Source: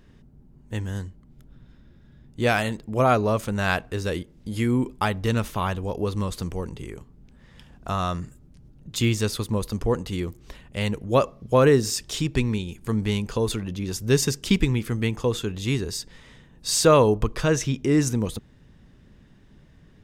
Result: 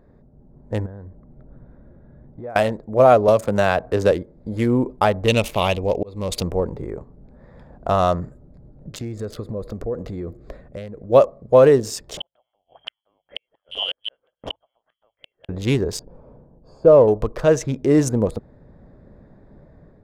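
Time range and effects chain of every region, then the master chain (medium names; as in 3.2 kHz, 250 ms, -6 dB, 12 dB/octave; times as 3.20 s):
0.86–2.56 s: low-pass 2.5 kHz + compression 8:1, threshold -38 dBFS
3.28–4.12 s: high-pass 44 Hz + three bands compressed up and down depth 100%
5.28–6.43 s: resonant high shelf 2 kHz +7.5 dB, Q 3 + slow attack 372 ms
8.89–11.10 s: peaking EQ 910 Hz -9 dB 0.41 oct + band-stop 920 Hz, Q 15 + compression, threshold -31 dBFS
12.17–15.49 s: frequency inversion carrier 3.2 kHz + hum notches 50/100/150 Hz + inverted gate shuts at -18 dBFS, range -41 dB
15.99–17.08 s: hard clipper -9.5 dBFS + boxcar filter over 23 samples
whole clip: local Wiener filter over 15 samples; peaking EQ 590 Hz +12 dB 1 oct; level rider gain up to 5 dB; trim -1 dB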